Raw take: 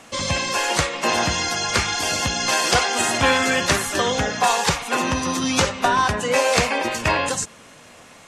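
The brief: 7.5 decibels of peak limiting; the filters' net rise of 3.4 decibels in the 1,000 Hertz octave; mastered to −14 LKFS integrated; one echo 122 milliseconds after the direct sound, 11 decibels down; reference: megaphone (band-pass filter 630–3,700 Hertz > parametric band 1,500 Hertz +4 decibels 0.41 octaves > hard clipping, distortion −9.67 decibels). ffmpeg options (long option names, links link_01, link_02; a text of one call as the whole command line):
ffmpeg -i in.wav -af "equalizer=frequency=1000:width_type=o:gain=4.5,alimiter=limit=-9.5dB:level=0:latency=1,highpass=630,lowpass=3700,equalizer=frequency=1500:width_type=o:width=0.41:gain=4,aecho=1:1:122:0.282,asoftclip=type=hard:threshold=-20.5dB,volume=9.5dB" out.wav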